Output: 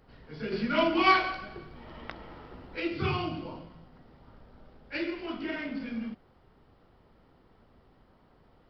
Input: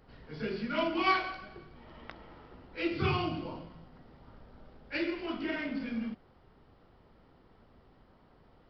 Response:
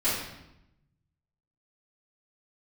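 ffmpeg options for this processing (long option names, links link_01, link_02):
-filter_complex "[0:a]asettb=1/sr,asplit=3[link_01][link_02][link_03];[link_01]atrim=end=0.524[link_04];[link_02]atrim=start=0.52:end=2.8,asetpts=PTS-STARTPTS,afade=type=in:duration=0.004:curve=qsin,afade=type=out:start_time=2.276:duration=0.004:curve=qsin,acontrast=38[link_05];[link_03]atrim=start=2.796[link_06];[link_04][link_05]acrossfade=duration=0.004:curve1=hsin:curve2=qsin[link_07];[link_07][link_06]acrossfade=duration=0.004:curve1=qsin:curve2=hsin"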